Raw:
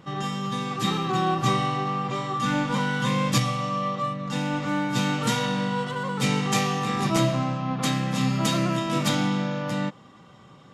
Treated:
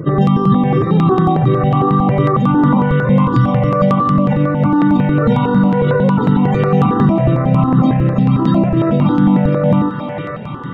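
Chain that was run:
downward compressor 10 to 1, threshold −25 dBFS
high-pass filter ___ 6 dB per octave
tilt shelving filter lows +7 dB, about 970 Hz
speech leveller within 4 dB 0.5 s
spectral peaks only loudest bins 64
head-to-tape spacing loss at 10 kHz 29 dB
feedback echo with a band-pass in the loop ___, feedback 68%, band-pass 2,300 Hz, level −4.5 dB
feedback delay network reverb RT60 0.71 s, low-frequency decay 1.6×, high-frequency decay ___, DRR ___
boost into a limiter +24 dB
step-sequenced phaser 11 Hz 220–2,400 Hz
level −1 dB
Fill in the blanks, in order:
110 Hz, 467 ms, 0.6×, 17 dB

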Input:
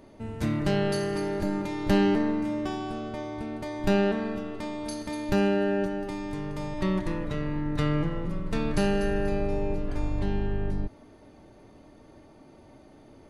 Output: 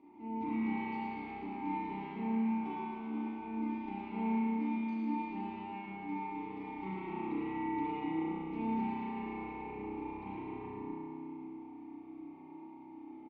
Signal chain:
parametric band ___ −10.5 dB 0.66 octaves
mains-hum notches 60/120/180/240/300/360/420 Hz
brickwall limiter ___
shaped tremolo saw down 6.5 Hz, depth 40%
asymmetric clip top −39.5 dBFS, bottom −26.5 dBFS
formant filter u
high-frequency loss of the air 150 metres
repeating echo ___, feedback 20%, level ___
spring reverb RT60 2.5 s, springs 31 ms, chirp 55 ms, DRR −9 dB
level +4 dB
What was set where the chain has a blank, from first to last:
120 Hz, −21.5 dBFS, 112 ms, −3.5 dB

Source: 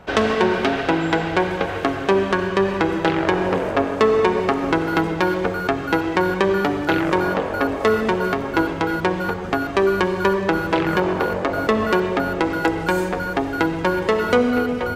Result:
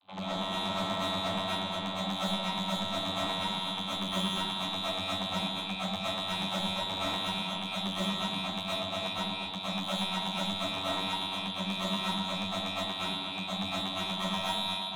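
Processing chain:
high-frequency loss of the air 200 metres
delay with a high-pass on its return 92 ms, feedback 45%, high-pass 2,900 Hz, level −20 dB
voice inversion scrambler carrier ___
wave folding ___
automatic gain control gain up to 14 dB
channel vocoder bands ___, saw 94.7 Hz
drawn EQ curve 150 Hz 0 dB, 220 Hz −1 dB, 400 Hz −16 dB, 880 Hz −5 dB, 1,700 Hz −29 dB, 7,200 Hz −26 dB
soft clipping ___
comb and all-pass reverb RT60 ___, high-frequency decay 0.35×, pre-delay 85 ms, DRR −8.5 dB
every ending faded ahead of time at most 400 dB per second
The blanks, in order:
3,900 Hz, −7 dBFS, 32, −34 dBFS, 0.49 s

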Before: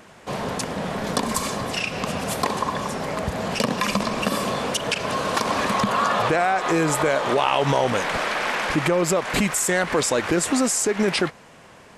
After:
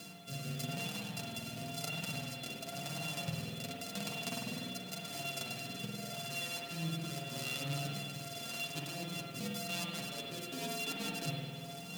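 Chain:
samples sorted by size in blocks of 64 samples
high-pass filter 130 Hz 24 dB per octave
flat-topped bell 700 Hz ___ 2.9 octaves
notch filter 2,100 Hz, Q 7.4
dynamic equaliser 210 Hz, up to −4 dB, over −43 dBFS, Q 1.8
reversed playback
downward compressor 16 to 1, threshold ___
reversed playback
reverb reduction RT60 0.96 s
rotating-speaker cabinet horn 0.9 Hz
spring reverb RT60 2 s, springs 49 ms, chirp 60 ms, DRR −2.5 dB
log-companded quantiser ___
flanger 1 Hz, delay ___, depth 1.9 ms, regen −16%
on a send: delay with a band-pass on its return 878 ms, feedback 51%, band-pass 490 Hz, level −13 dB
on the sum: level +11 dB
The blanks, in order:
−11.5 dB, −40 dBFS, 6 bits, 6.2 ms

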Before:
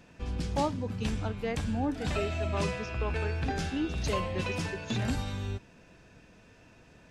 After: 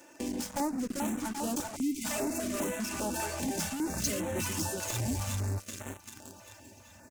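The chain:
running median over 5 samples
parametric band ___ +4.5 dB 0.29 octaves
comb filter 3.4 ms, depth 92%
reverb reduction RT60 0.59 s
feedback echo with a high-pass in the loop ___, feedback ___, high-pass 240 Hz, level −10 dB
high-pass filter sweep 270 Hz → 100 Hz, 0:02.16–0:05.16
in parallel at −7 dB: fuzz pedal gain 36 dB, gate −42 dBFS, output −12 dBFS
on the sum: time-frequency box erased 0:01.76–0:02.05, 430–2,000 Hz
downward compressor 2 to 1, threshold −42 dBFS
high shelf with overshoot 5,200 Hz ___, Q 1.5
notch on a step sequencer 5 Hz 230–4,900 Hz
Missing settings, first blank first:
860 Hz, 390 ms, 64%, +11.5 dB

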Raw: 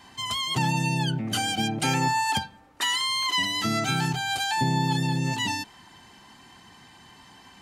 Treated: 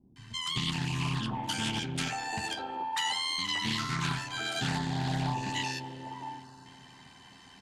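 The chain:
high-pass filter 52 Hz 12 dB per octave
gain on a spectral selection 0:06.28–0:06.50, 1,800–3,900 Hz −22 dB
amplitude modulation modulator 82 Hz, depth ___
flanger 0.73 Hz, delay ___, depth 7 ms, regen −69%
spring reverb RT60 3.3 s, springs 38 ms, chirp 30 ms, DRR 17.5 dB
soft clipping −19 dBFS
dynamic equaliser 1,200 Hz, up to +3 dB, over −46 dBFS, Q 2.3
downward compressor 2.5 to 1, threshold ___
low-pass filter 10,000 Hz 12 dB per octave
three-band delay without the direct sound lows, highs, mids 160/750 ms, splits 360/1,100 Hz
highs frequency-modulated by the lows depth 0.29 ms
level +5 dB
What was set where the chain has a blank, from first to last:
40%, 4.8 ms, −34 dBFS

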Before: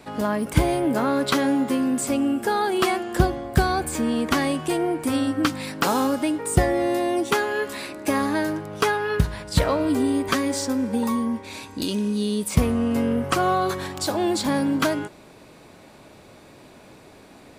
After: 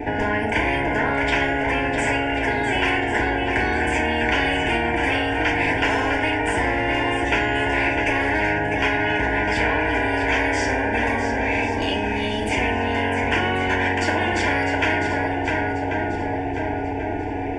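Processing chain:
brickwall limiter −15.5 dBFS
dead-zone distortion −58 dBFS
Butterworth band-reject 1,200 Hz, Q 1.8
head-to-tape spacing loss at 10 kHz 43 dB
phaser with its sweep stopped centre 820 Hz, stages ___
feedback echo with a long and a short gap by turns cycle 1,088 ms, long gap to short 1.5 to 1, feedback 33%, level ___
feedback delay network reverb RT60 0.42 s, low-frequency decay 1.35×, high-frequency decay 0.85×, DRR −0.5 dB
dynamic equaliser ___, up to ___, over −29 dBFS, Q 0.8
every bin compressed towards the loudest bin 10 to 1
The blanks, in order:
8, −8.5 dB, 130 Hz, −5 dB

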